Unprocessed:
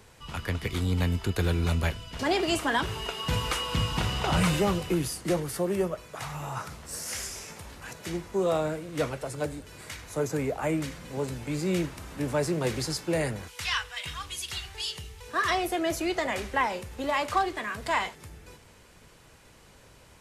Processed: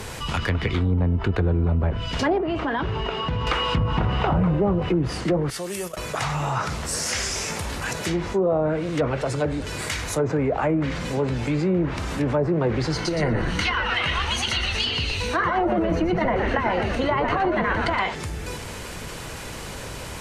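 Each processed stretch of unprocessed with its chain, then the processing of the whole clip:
2.38–3.47 s: tape spacing loss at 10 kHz 32 dB + compression 3:1, threshold -33 dBFS
5.50–5.97 s: pre-emphasis filter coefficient 0.9 + gate -49 dBFS, range -13 dB
12.93–18.00 s: rippled EQ curve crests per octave 1.9, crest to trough 9 dB + compressor with a negative ratio -27 dBFS, ratio -0.5 + frequency-shifting echo 118 ms, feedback 56%, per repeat -150 Hz, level -6 dB
whole clip: low-pass that closes with the level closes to 810 Hz, closed at -22 dBFS; level flattener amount 50%; trim +4 dB

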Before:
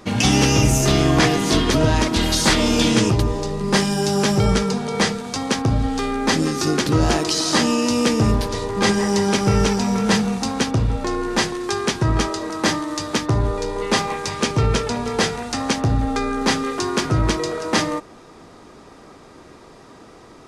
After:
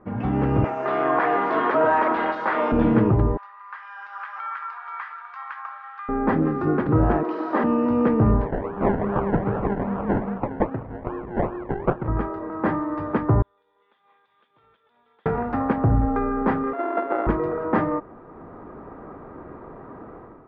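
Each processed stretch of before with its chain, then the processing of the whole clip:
0.64–2.72 s: high-pass 700 Hz + treble shelf 8 kHz +3.5 dB + level flattener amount 70%
3.37–6.09 s: steep high-pass 1.1 kHz + compression 12:1, threshold -26 dBFS
7.23–7.64 s: high-pass 260 Hz 24 dB/octave + flutter echo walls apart 8.2 m, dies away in 0.54 s
8.45–12.08 s: frequency weighting D + harmonic tremolo 4.8 Hz, crossover 1.2 kHz + decimation with a swept rate 29×, swing 60% 2.5 Hz
13.42–15.26 s: band-pass filter 3.5 kHz, Q 19 + compression 4:1, threshold -48 dBFS
16.73–17.27 s: sorted samples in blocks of 64 samples + steep high-pass 280 Hz + treble shelf 6.4 kHz -8.5 dB
whole clip: low-pass 1.5 kHz 24 dB/octave; level rider; trim -7 dB

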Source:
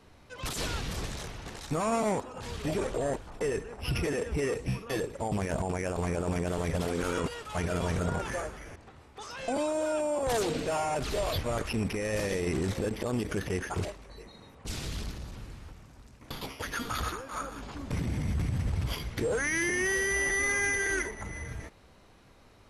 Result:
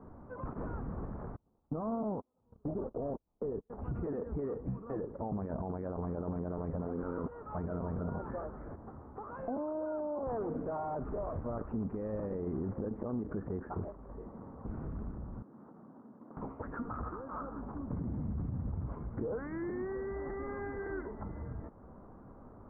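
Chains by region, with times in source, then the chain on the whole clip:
1.36–3.70 s: low-pass 1 kHz + gate -34 dBFS, range -35 dB
15.42–16.37 s: high-pass 190 Hz 24 dB/octave + distance through air 490 m + compression 4:1, threshold -56 dBFS
whole clip: steep low-pass 1.3 kHz 36 dB/octave; peaking EQ 230 Hz +6 dB 0.83 oct; compression 2:1, threshold -48 dBFS; trim +4 dB

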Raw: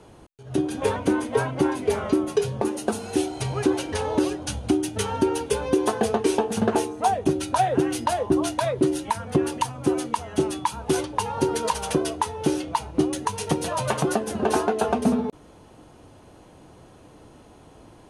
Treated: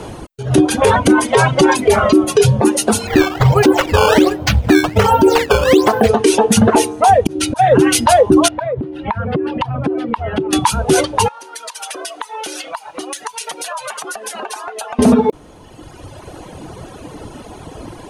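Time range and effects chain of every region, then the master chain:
1.28–1.77 s: low-pass 7.8 kHz + treble shelf 3.4 kHz +9 dB + comb 5.4 ms, depth 34%
3.07–6.09 s: decimation with a swept rate 13×, swing 160% 1.3 Hz + treble shelf 6 kHz -11.5 dB
7.24–7.72 s: slow attack 259 ms + loudspeaker Doppler distortion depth 0.17 ms
8.48–10.53 s: distance through air 410 m + compression 8:1, threshold -33 dBFS
11.28–14.99 s: high-pass 900 Hz + compression 20:1, threshold -40 dBFS
whole clip: reverb removal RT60 1.9 s; loudness maximiser +21 dB; trim -1 dB

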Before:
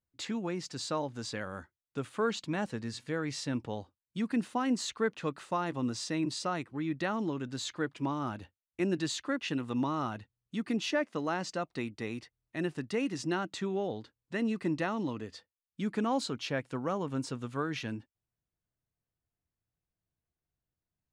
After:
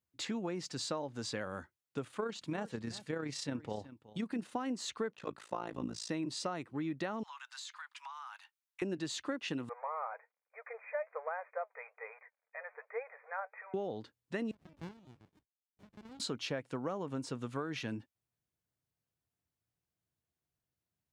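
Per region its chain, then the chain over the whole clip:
2.04–4.52 s: AM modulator 31 Hz, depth 30% + delay 372 ms -18.5 dB
5.13–6.09 s: comb of notches 160 Hz + AM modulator 55 Hz, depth 95%
7.23–8.82 s: steep high-pass 890 Hz 48 dB/octave + compression 12:1, threshold -42 dBFS
9.69–13.74 s: companding laws mixed up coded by mu + brick-wall FIR band-pass 440–2500 Hz + flange 1.2 Hz, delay 2.4 ms, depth 3.1 ms, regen +72%
14.51–16.20 s: differentiator + LPC vocoder at 8 kHz pitch kept + sliding maximum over 65 samples
whole clip: high-pass 79 Hz; dynamic bell 570 Hz, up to +4 dB, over -41 dBFS, Q 0.83; compression, threshold -34 dBFS

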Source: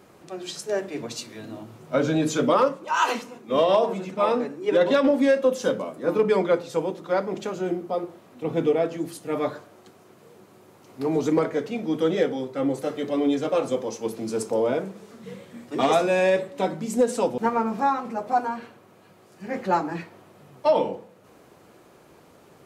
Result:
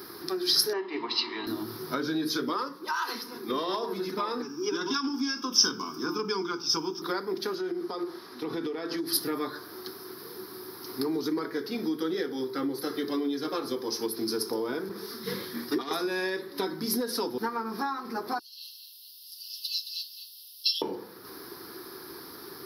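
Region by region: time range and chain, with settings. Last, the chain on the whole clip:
0.73–1.47 s: cabinet simulation 370–3400 Hz, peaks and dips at 380 Hz +4 dB, 920 Hz +6 dB, 1.7 kHz -5 dB, 2.6 kHz +9 dB + comb 1 ms, depth 60%
4.42–7.02 s: peaking EQ 5.6 kHz +13 dB 0.53 oct + static phaser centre 2.8 kHz, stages 8
7.55–9.13 s: low-pass 8.6 kHz + bass shelf 350 Hz -7 dB + compression 4:1, threshold -33 dBFS
14.89–15.91 s: compressor with a negative ratio -28 dBFS + three bands expanded up and down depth 100%
18.39–20.82 s: brick-wall FIR high-pass 2.6 kHz + delay 219 ms -8 dB
whole clip: FFT filter 190 Hz 0 dB, 380 Hz +13 dB, 580 Hz -7 dB, 1 kHz +10 dB, 1.7 kHz +15 dB, 2.8 kHz -8 dB, 5.2 kHz +8 dB, 7.5 kHz -28 dB, 11 kHz +10 dB; compression 5:1, threshold -29 dBFS; resonant high shelf 2.6 kHz +12.5 dB, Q 1.5

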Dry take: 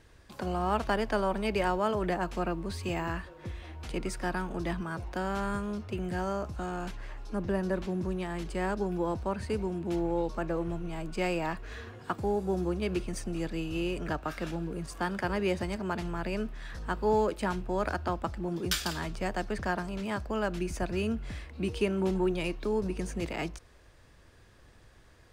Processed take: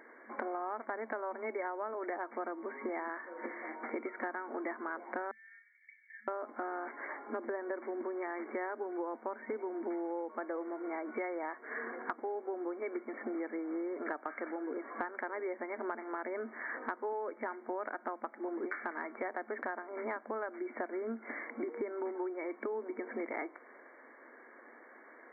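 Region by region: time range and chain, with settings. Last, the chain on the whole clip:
5.31–6.28 s: compression 2.5:1, threshold -37 dBFS + rippled Chebyshev high-pass 1.7 kHz, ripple 9 dB + doubling 27 ms -11 dB
whole clip: FFT band-pass 220–2300 Hz; bass shelf 290 Hz -8.5 dB; compression 10:1, threshold -44 dBFS; trim +9 dB

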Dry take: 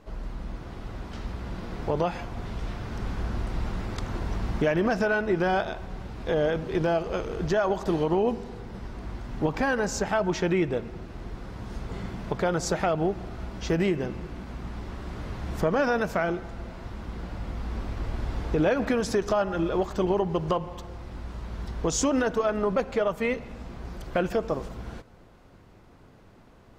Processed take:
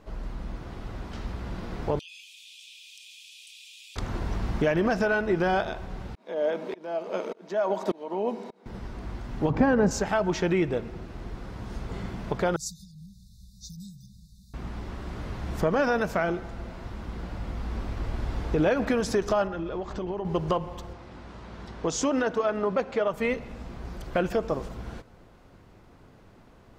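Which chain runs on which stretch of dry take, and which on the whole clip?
1.99–3.96 s: rippled Chebyshev high-pass 2.4 kHz, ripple 6 dB + level flattener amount 70%
6.15–8.66 s: elliptic high-pass 190 Hz + tremolo saw up 1.7 Hz, depth 100% + small resonant body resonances 620/930/2200/3800 Hz, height 8 dB, ringing for 30 ms
9.50–9.91 s: high-pass 110 Hz + tilt EQ -4 dB/octave
12.56–14.54 s: brick-wall FIR band-stop 220–3500 Hz + pre-emphasis filter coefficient 0.8
19.47–20.25 s: compression 3:1, threshold -30 dBFS + distance through air 78 m
20.93–23.14 s: high-pass 180 Hz 6 dB/octave + distance through air 50 m
whole clip: none

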